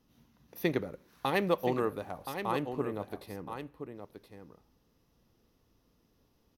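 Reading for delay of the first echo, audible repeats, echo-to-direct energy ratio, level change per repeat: 1023 ms, 1, -8.5 dB, no regular repeats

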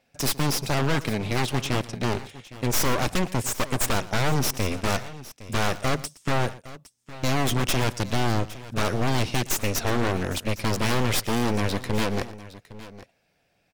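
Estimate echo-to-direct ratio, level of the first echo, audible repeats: -14.5 dB, -18.5 dB, 2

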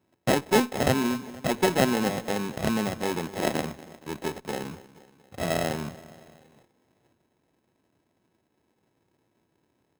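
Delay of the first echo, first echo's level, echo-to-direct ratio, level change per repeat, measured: 236 ms, -18.0 dB, -16.5 dB, -5.0 dB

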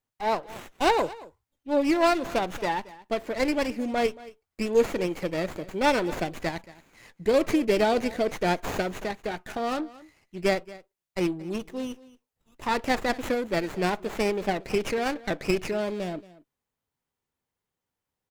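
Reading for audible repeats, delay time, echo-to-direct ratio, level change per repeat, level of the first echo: 1, 227 ms, -19.5 dB, no regular repeats, -19.5 dB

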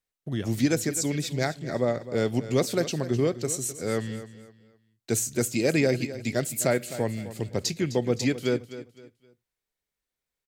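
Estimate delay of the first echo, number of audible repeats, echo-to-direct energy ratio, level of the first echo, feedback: 257 ms, 3, -13.5 dB, -14.0 dB, 31%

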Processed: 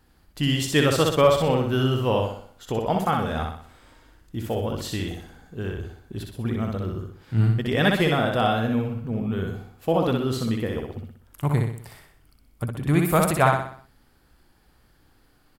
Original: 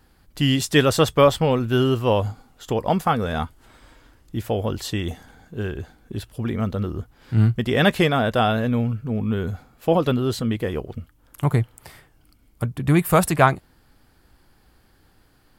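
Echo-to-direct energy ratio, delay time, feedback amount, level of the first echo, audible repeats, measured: -2.5 dB, 62 ms, 45%, -3.5 dB, 5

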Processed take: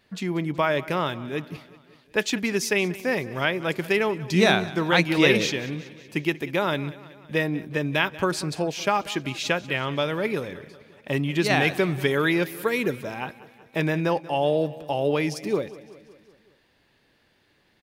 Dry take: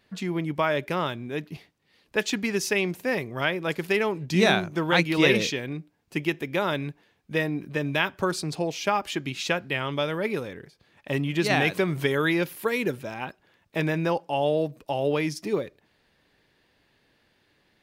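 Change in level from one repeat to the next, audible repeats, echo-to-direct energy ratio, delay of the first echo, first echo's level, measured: -4.5 dB, 4, -16.5 dB, 187 ms, -18.5 dB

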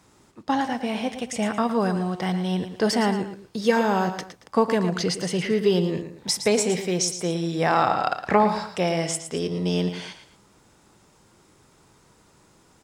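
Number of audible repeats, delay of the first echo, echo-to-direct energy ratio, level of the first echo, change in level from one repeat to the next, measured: 2, 113 ms, -9.5 dB, -10.0 dB, -9.5 dB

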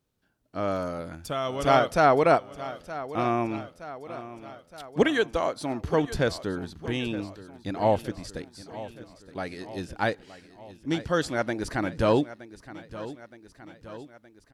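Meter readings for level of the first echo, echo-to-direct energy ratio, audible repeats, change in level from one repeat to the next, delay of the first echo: -15.5 dB, -13.5 dB, 4, -4.5 dB, 919 ms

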